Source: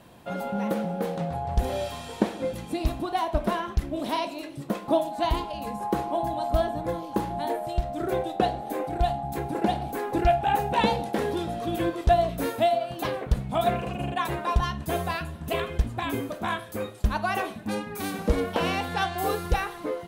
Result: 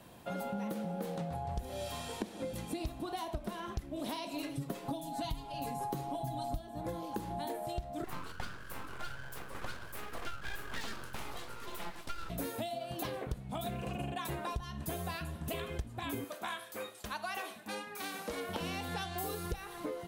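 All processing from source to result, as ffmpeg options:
-filter_complex "[0:a]asettb=1/sr,asplit=3[a][b][c];[a]atrim=end=4.334[d];[b]atrim=start=4.33:end=6.59,asetpts=PTS-STARTPTS,afade=t=in:d=0.004:c=qsin,afade=t=out:st=2.256:d=0.004:c=qsin,lowshelf=f=140:g=6.5,aecho=1:1:7.3:0.95,atrim=end_sample=99666[e];[c]atrim=start=6.586[f];[d][e]acrossfade=d=0.004:c1=hsin:c2=qsin[g];[g][f]acrossfade=d=0.004:c1=qsin:c2=hsin,asettb=1/sr,asplit=3[h][i][j];[h]atrim=end=8.044[k];[i]atrim=start=8.04:end=12.3,asetpts=PTS-STARTPTS,afade=t=in:d=0.004:c=qsin,afade=t=out:st=4.256:d=0.004:c=qsin,highpass=f=500:p=1,flanger=delay=5:depth=8.7:regen=-78:speed=1.4:shape=triangular,aeval=exprs='abs(val(0))':c=same[l];[j]atrim=start=12.296[m];[k][l]acrossfade=d=0.004:c1=hsin:c2=qsin[n];[n][m]acrossfade=d=0.004:c1=qsin:c2=hsin,asettb=1/sr,asplit=3[o][p][q];[o]atrim=end=16.244[r];[p]atrim=start=16.24:end=18.49,asetpts=PTS-STARTPTS,afade=t=in:d=0.004:c=qsin,afade=t=out:st=2.246:d=0.004:c=qsin,acrossover=split=5700[s][t];[t]acompressor=threshold=-46dB:ratio=4:attack=1:release=60[u];[s][u]amix=inputs=2:normalize=0,highpass=f=910:p=1[v];[q]atrim=start=18.486[w];[r][v]acrossfade=d=0.004:c1=hsin:c2=qsin[x];[x][w]acrossfade=d=0.004:c1=qsin:c2=hsin,acrossover=split=310|3000[y][z][aa];[z]acompressor=threshold=-31dB:ratio=6[ab];[y][ab][aa]amix=inputs=3:normalize=0,highshelf=f=6.2k:g=5.5,acompressor=threshold=-30dB:ratio=12,volume=-4dB"

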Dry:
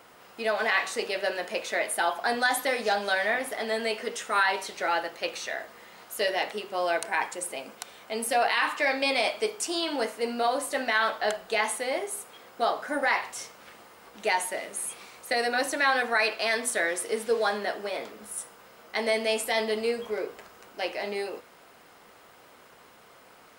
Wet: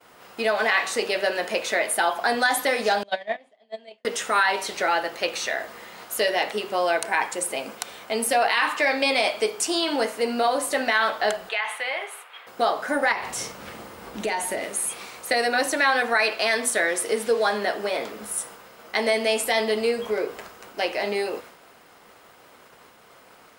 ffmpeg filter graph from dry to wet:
-filter_complex "[0:a]asettb=1/sr,asplit=3[a][b][c];[a]atrim=end=3.034[d];[b]atrim=start=3.03:end=4.05,asetpts=PTS-STARTPTS,afade=t=in:d=0.004:c=qsin,afade=t=out:st=1.016:d=0.004:c=qsin,agate=range=-30dB:threshold=-24dB:ratio=16:release=100:detection=peak,highpass=150,equalizer=f=200:t=q:w=4:g=8,equalizer=f=640:t=q:w=4:g=9,equalizer=f=1.4k:t=q:w=4:g=-9,equalizer=f=3.3k:t=q:w=4:g=7,equalizer=f=5.6k:t=q:w=4:g=-8,lowpass=f=7.1k:w=0.5412,lowpass=f=7.1k:w=1.3066[e];[c]atrim=start=4.046[f];[d][e]acrossfade=d=0.004:c1=hsin:c2=qsin[g];[g][f]acrossfade=d=0.004:c1=qsin:c2=hsin,asettb=1/sr,asplit=3[h][i][j];[h]atrim=end=11.494[k];[i]atrim=start=11.49:end=12.47,asetpts=PTS-STARTPTS,afade=t=in:d=0.004:c=qsin,afade=t=out:st=0.976:d=0.004:c=qsin,highpass=920,highshelf=f=4.2k:t=q:w=1.5:g=-13,acompressor=threshold=-32dB:ratio=2:attack=3.2:release=140:knee=1:detection=peak[l];[j]atrim=start=12.466[m];[k][l]acrossfade=d=0.004:c1=hsin:c2=qsin[n];[n][m]acrossfade=d=0.004:c1=qsin:c2=hsin,asettb=1/sr,asplit=3[o][p][q];[o]atrim=end=13.124[r];[p]atrim=start=13.12:end=14.64,asetpts=PTS-STARTPTS,afade=t=in:d=0.004:c=qsin,afade=t=out:st=1.516:d=0.004:c=qsin,lowshelf=f=320:g=11.5,acompressor=threshold=-33dB:ratio=2.5:attack=3.2:release=140:knee=1:detection=peak,asplit=2[s][t];[t]adelay=47,volume=-11dB[u];[s][u]amix=inputs=2:normalize=0,atrim=end_sample=67032[v];[q]atrim=start=14.636[w];[r][v]acrossfade=d=0.004:c1=hsin:c2=qsin[x];[x][w]acrossfade=d=0.004:c1=qsin:c2=hsin,agate=range=-33dB:threshold=-48dB:ratio=3:detection=peak,acompressor=threshold=-33dB:ratio=1.5,volume=8dB"

